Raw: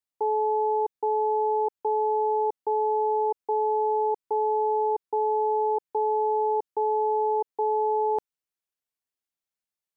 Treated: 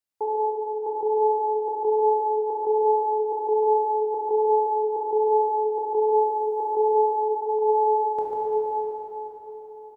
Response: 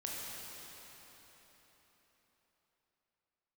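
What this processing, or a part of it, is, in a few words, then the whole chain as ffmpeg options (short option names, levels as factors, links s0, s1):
cave: -filter_complex "[0:a]asettb=1/sr,asplit=3[s0][s1][s2];[s0]atrim=end=6.124[s3];[s1]atrim=start=6.12:end=6.69,asetpts=PTS-STARTPTS,afade=t=in:d=0.004:c=qsin,afade=t=out:st=0.566:d=0.004:c=qsin,bass=f=250:g=-3,treble=f=4000:g=13[s4];[s2]atrim=start=6.686[s5];[s3][s4]acrossfade=d=0.004:c1=hsin:c2=qsin[s6];[s6][s5]acrossfade=d=0.004:c1=qsin:c2=hsin,asplit=3[s7][s8][s9];[s7]afade=t=out:st=7.28:d=0.02[s10];[s8]highpass=800,afade=t=in:st=7.28:d=0.02,afade=t=out:st=7.68:d=0.02[s11];[s9]afade=t=in:st=7.68:d=0.02[s12];[s10][s11][s12]amix=inputs=3:normalize=0,asplit=2[s13][s14];[s14]adelay=145.8,volume=0.501,highshelf=f=4000:g=-3.28[s15];[s13][s15]amix=inputs=2:normalize=0,aecho=1:1:345:0.282[s16];[1:a]atrim=start_sample=2205[s17];[s16][s17]afir=irnorm=-1:irlink=0,volume=1.5"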